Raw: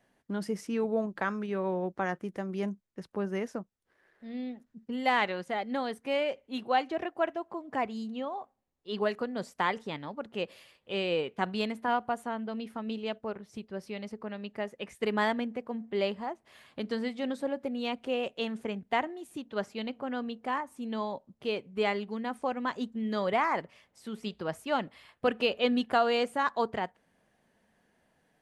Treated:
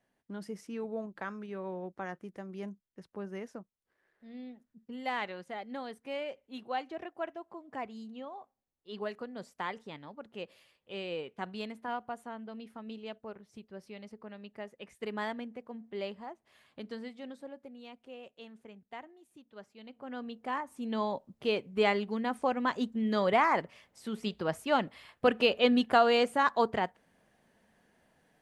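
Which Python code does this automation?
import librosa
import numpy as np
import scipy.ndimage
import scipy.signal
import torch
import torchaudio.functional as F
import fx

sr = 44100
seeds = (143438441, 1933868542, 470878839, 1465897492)

y = fx.gain(x, sr, db=fx.line((16.84, -8.0), (17.9, -16.5), (19.78, -16.5), (20.12, -6.5), (21.07, 2.0)))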